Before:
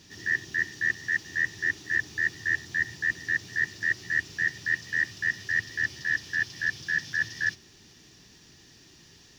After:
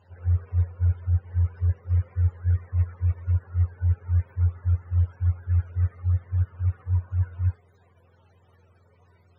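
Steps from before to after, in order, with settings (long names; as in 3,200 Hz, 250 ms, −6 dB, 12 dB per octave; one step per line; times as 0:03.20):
frequency axis turned over on the octave scale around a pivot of 400 Hz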